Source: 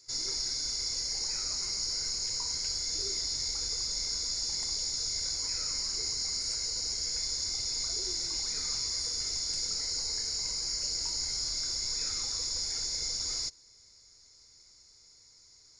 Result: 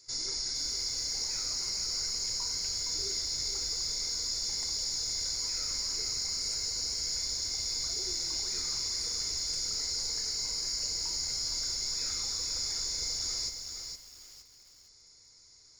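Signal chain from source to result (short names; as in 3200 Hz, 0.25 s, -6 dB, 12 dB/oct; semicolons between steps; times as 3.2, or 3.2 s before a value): in parallel at -2.5 dB: limiter -28 dBFS, peak gain reduction 8 dB; on the sum: lo-fi delay 0.464 s, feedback 35%, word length 8-bit, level -6 dB; gain -4.5 dB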